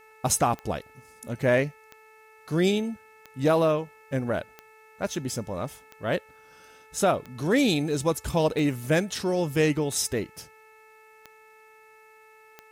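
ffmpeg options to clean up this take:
ffmpeg -i in.wav -af "adeclick=threshold=4,bandreject=frequency=436.9:width_type=h:width=4,bandreject=frequency=873.8:width_type=h:width=4,bandreject=frequency=1310.7:width_type=h:width=4,bandreject=frequency=1747.6:width_type=h:width=4,bandreject=frequency=2184.5:width_type=h:width=4,bandreject=frequency=2621.4:width_type=h:width=4,agate=range=-21dB:threshold=-46dB" out.wav

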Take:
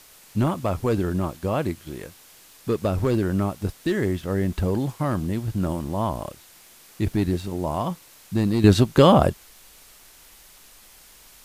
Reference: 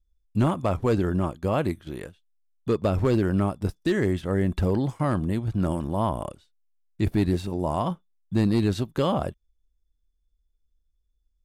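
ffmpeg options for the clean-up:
ffmpeg -i in.wav -af "adeclick=threshold=4,afwtdn=0.0035,asetnsamples=nb_out_samples=441:pad=0,asendcmd='8.64 volume volume -10dB',volume=0dB" out.wav

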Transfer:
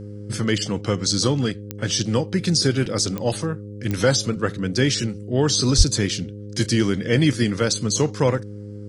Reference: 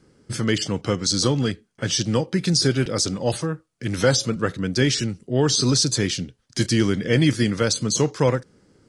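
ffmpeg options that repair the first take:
ffmpeg -i in.wav -filter_complex "[0:a]adeclick=threshold=4,bandreject=frequency=103:width_type=h:width=4,bandreject=frequency=206:width_type=h:width=4,bandreject=frequency=309:width_type=h:width=4,bandreject=frequency=412:width_type=h:width=4,bandreject=frequency=515:width_type=h:width=4,asplit=3[link_01][link_02][link_03];[link_01]afade=type=out:start_time=5.77:duration=0.02[link_04];[link_02]highpass=frequency=140:width=0.5412,highpass=frequency=140:width=1.3066,afade=type=in:start_time=5.77:duration=0.02,afade=type=out:start_time=5.89:duration=0.02[link_05];[link_03]afade=type=in:start_time=5.89:duration=0.02[link_06];[link_04][link_05][link_06]amix=inputs=3:normalize=0" out.wav

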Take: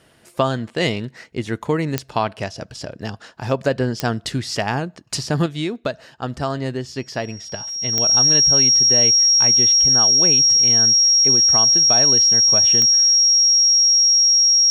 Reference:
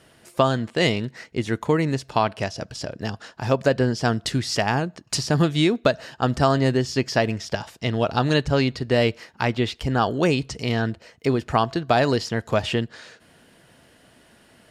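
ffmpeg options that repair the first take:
ffmpeg -i in.wav -af "adeclick=threshold=4,bandreject=frequency=5600:width=30,asetnsamples=nb_out_samples=441:pad=0,asendcmd='5.46 volume volume 5dB',volume=0dB" out.wav

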